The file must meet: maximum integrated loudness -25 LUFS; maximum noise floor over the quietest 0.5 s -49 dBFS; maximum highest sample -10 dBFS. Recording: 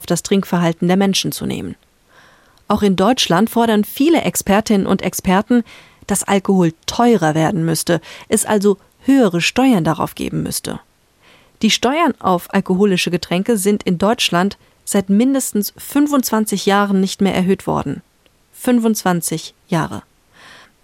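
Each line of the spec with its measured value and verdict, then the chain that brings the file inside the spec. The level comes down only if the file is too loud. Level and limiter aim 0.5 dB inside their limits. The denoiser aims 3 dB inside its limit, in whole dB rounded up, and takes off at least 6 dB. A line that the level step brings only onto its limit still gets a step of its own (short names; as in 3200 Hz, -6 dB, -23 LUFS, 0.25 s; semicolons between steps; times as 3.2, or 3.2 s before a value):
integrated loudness -16.0 LUFS: fail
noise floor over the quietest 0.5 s -56 dBFS: OK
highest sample -3.5 dBFS: fail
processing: gain -9.5 dB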